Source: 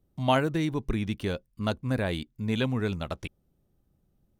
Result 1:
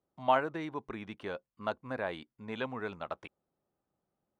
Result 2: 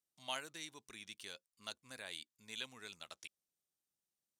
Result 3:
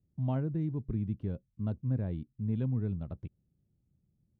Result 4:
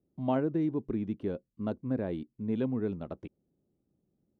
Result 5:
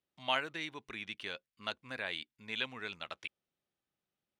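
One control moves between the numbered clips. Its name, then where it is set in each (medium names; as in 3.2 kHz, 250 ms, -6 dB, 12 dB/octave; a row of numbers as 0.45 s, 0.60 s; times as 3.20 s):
band-pass filter, frequency: 990 Hz, 7.5 kHz, 120 Hz, 310 Hz, 2.6 kHz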